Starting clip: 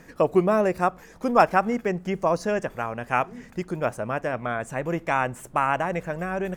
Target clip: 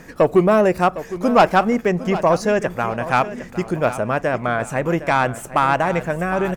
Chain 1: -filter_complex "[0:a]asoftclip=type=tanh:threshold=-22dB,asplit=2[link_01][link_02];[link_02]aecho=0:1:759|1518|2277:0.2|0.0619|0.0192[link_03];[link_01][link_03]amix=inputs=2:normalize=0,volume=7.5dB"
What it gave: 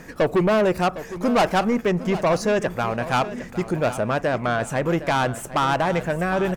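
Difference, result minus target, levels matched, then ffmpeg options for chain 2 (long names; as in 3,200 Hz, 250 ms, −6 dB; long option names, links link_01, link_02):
soft clipping: distortion +8 dB
-filter_complex "[0:a]asoftclip=type=tanh:threshold=-12.5dB,asplit=2[link_01][link_02];[link_02]aecho=0:1:759|1518|2277:0.2|0.0619|0.0192[link_03];[link_01][link_03]amix=inputs=2:normalize=0,volume=7.5dB"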